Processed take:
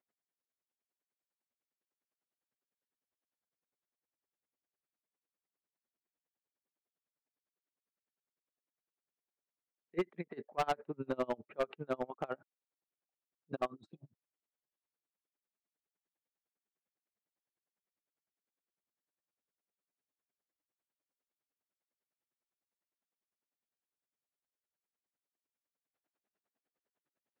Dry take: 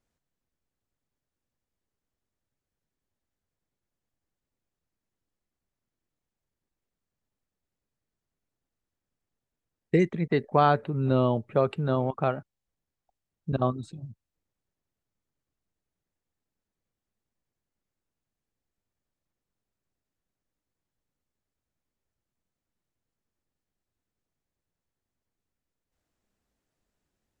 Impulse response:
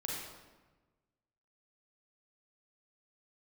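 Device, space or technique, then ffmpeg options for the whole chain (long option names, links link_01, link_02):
helicopter radio: -af "highpass=310,lowpass=2700,aeval=exprs='val(0)*pow(10,-33*(0.5-0.5*cos(2*PI*9.9*n/s))/20)':channel_layout=same,asoftclip=type=hard:threshold=-25.5dB,volume=-1dB"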